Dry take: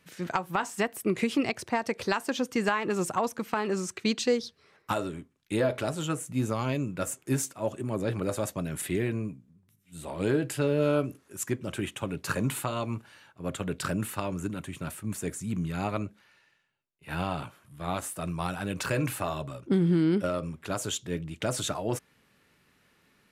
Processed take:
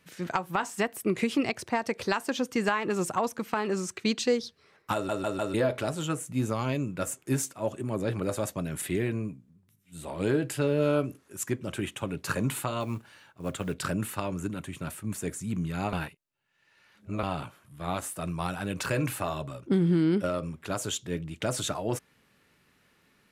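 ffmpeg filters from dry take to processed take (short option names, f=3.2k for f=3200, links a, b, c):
-filter_complex "[0:a]asettb=1/sr,asplit=3[a][b][c];[a]atrim=end=12.804[d];[b]atrim=start=12.8:end=13.74,asetpts=PTS-STARTPTS,afade=t=in:d=0.004:c=qsin,afade=t=out:st=0.936:d=0.004:c=qsin,acrusher=bits=7:mode=log:mix=0:aa=0.000001[e];[c]atrim=start=13.736[f];[d][e]acrossfade=d=0.004:c1=hsin:c2=qsin[g];[g][f]acrossfade=d=0.004:c1=qsin:c2=hsin,asplit=7[h][i][j][k][l][m][n];[h]atrim=end=5.092[o];[i]atrim=start=4.938:end=5.092[p];[j]atrim=start=4.938:end=5.092[q];[k]atrim=start=4.938:end=5.092[r];[l]atrim=start=5.538:end=15.932[s];[m]atrim=start=15.928:end=17.232,asetpts=PTS-STARTPTS,areverse[t];[n]atrim=start=17.228[u];[o][p]acrossfade=d=0.004:c1=hsin:c2=hsin[v];[v][q]acrossfade=d=0.004:c1=hsin:c2=hsin[w];[w][r]acrossfade=d=0.004:c1=hsin:c2=hsin[x];[x][s]acrossfade=d=0.004:c1=hsin:c2=hsin[y];[y][t]acrossfade=d=0.004:c1=hsin:c2=hsin[z];[z][u]acrossfade=d=0.004:c1=hsin:c2=hsin"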